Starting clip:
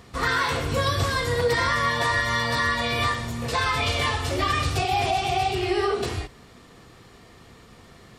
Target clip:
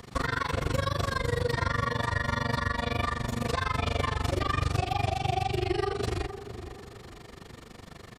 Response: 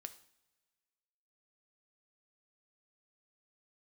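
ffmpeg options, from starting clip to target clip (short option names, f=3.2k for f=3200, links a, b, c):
-filter_complex "[0:a]acrossover=split=230|1700[a][b][c];[a]acompressor=threshold=-30dB:ratio=4[d];[b]acompressor=threshold=-33dB:ratio=4[e];[c]acompressor=threshold=-42dB:ratio=4[f];[d][e][f]amix=inputs=3:normalize=0,tremolo=f=24:d=0.974,asplit=2[g][h];[h]adelay=466,lowpass=f=1.1k:p=1,volume=-10dB,asplit=2[i][j];[j]adelay=466,lowpass=f=1.1k:p=1,volume=0.39,asplit=2[k][l];[l]adelay=466,lowpass=f=1.1k:p=1,volume=0.39,asplit=2[m][n];[n]adelay=466,lowpass=f=1.1k:p=1,volume=0.39[o];[g][i][k][m][o]amix=inputs=5:normalize=0,volume=5.5dB"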